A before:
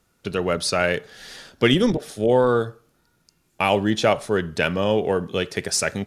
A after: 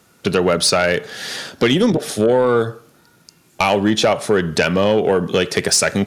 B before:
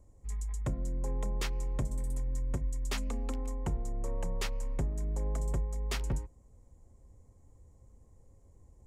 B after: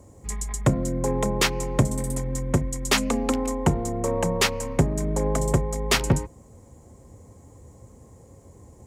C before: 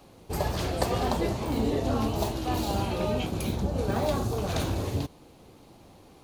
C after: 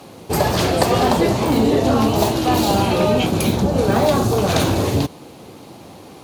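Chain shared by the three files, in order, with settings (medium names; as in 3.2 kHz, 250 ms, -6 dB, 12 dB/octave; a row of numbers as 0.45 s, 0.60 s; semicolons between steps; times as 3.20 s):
high-pass 110 Hz 12 dB/octave; compression 4:1, threshold -24 dBFS; sine folder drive 7 dB, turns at -9 dBFS; peak normalisation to -6 dBFS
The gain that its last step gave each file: +2.0 dB, +6.5 dB, +3.0 dB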